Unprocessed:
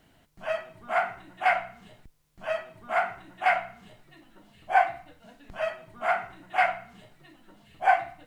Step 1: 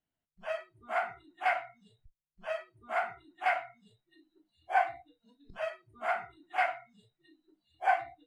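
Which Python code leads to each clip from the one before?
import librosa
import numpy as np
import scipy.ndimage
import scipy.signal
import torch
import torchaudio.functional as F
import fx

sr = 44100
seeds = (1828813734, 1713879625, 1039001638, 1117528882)

y = fx.noise_reduce_blind(x, sr, reduce_db=24)
y = F.gain(torch.from_numpy(y), -6.0).numpy()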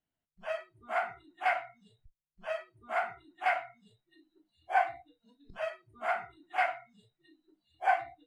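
y = x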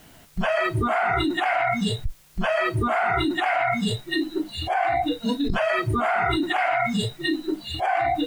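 y = fx.env_flatten(x, sr, amount_pct=100)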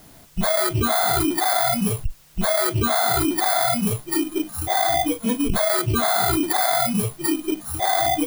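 y = fx.bit_reversed(x, sr, seeds[0], block=16)
y = F.gain(torch.from_numpy(y), 2.5).numpy()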